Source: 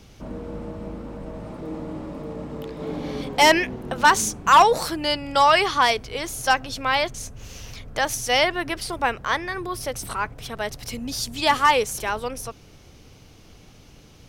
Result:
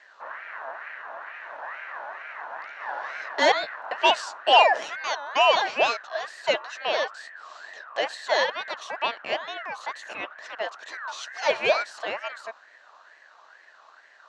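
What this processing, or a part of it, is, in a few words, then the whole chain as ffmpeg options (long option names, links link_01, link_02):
voice changer toy: -af "aeval=exprs='val(0)*sin(2*PI*1500*n/s+1500*0.25/2.2*sin(2*PI*2.2*n/s))':channel_layout=same,highpass=600,equalizer=frequency=630:width_type=q:width=4:gain=8,equalizer=frequency=1300:width_type=q:width=4:gain=-6,equalizer=frequency=2200:width_type=q:width=4:gain=-9,equalizer=frequency=3400:width_type=q:width=4:gain=-6,equalizer=frequency=4900:width_type=q:width=4:gain=-9,lowpass=frequency=5000:width=0.5412,lowpass=frequency=5000:width=1.3066,volume=2dB"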